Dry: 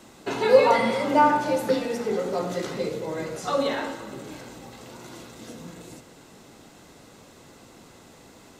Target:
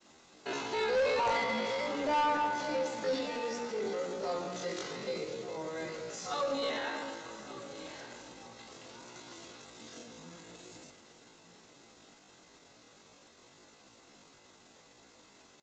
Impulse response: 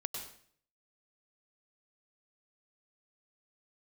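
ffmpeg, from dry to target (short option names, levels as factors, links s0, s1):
-af "bass=f=250:g=-5,treble=f=4000:g=4,agate=range=0.0224:threshold=0.00447:ratio=3:detection=peak,equalizer=f=2900:w=0.32:g=4,atempo=0.55,aresample=16000,asoftclip=type=tanh:threshold=0.141,aresample=44100,aecho=1:1:1177:0.168,volume=0.376"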